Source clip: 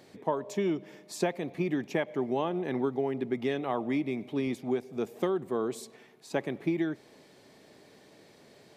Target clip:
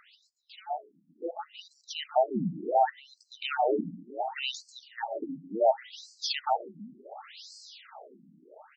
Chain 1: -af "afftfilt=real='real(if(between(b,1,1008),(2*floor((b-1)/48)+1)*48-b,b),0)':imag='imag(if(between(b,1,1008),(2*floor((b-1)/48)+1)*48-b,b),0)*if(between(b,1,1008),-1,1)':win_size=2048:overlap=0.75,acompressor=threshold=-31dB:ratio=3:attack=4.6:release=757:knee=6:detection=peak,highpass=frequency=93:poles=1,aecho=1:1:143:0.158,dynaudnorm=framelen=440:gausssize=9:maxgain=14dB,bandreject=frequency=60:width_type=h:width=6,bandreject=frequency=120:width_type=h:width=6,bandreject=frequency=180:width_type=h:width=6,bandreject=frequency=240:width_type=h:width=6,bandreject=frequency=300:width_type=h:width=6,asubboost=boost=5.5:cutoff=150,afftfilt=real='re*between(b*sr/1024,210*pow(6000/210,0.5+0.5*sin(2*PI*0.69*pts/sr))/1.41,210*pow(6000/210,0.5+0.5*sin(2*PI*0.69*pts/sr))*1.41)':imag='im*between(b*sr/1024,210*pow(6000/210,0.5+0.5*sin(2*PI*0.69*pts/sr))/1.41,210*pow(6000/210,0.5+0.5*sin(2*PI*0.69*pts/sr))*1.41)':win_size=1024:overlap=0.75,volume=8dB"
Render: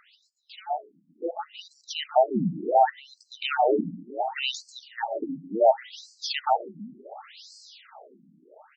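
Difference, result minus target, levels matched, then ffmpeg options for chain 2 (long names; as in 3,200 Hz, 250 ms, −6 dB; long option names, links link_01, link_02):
downward compressor: peak gain reduction −4.5 dB
-af "afftfilt=real='real(if(between(b,1,1008),(2*floor((b-1)/48)+1)*48-b,b),0)':imag='imag(if(between(b,1,1008),(2*floor((b-1)/48)+1)*48-b,b),0)*if(between(b,1,1008),-1,1)':win_size=2048:overlap=0.75,acompressor=threshold=-38dB:ratio=3:attack=4.6:release=757:knee=6:detection=peak,highpass=frequency=93:poles=1,aecho=1:1:143:0.158,dynaudnorm=framelen=440:gausssize=9:maxgain=14dB,bandreject=frequency=60:width_type=h:width=6,bandreject=frequency=120:width_type=h:width=6,bandreject=frequency=180:width_type=h:width=6,bandreject=frequency=240:width_type=h:width=6,bandreject=frequency=300:width_type=h:width=6,asubboost=boost=5.5:cutoff=150,afftfilt=real='re*between(b*sr/1024,210*pow(6000/210,0.5+0.5*sin(2*PI*0.69*pts/sr))/1.41,210*pow(6000/210,0.5+0.5*sin(2*PI*0.69*pts/sr))*1.41)':imag='im*between(b*sr/1024,210*pow(6000/210,0.5+0.5*sin(2*PI*0.69*pts/sr))/1.41,210*pow(6000/210,0.5+0.5*sin(2*PI*0.69*pts/sr))*1.41)':win_size=1024:overlap=0.75,volume=8dB"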